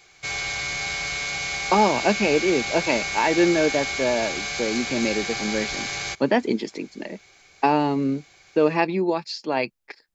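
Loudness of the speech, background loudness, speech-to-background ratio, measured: −23.5 LKFS, −27.0 LKFS, 3.5 dB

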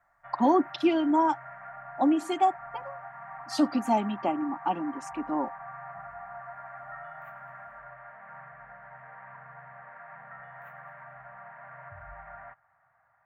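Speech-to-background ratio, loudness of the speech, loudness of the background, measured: 16.5 dB, −27.5 LKFS, −44.0 LKFS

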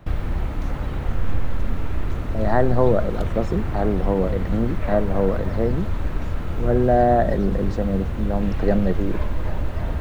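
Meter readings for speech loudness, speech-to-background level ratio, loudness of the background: −23.0 LKFS, 5.0 dB, −28.0 LKFS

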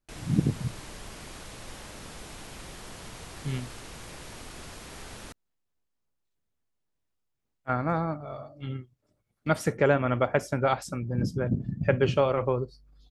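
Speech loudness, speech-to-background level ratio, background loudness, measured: −28.0 LKFS, 15.0 dB, −43.0 LKFS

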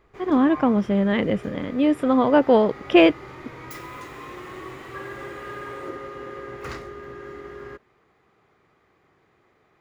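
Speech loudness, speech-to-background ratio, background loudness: −19.5 LKFS, 18.5 dB, −38.0 LKFS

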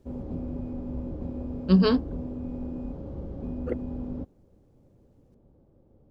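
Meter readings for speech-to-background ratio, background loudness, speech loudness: 13.5 dB, −36.0 LKFS, −22.5 LKFS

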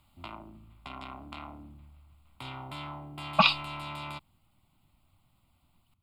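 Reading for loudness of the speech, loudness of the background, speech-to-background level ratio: −25.0 LKFS, −42.0 LKFS, 17.0 dB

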